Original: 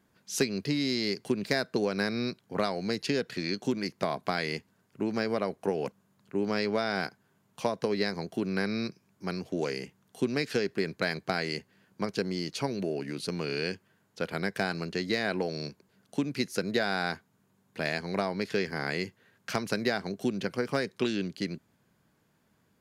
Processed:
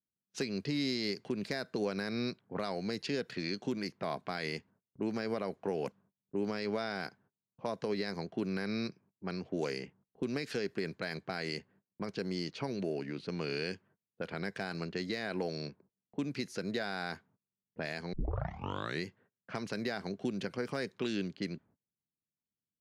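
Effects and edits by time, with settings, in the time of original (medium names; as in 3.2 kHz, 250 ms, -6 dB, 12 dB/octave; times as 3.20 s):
18.13 s: tape start 0.92 s
whole clip: level-controlled noise filter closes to 370 Hz, open at -27 dBFS; gate -58 dBFS, range -26 dB; peak limiter -20.5 dBFS; trim -3.5 dB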